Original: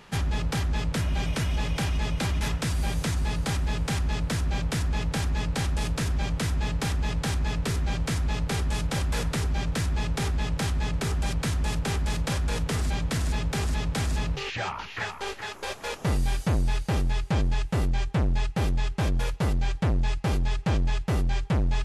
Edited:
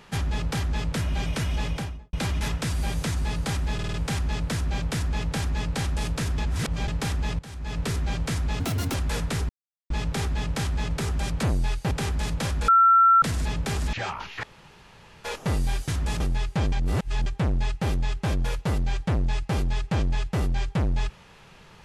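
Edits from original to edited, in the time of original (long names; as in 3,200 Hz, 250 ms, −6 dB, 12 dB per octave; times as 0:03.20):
0:01.64–0:02.13: fade out and dull
0:03.74: stutter 0.05 s, 5 plays
0:06.18–0:06.68: reverse
0:07.19–0:07.60: fade in quadratic, from −15.5 dB
0:08.40–0:08.97: play speed 167%
0:09.52–0:09.93: silence
0:11.46–0:11.78: swap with 0:16.47–0:16.95
0:12.55–0:13.09: beep over 1,350 Hz −13 dBFS
0:13.80–0:14.52: remove
0:15.02–0:15.83: fill with room tone
0:17.47–0:18.01: reverse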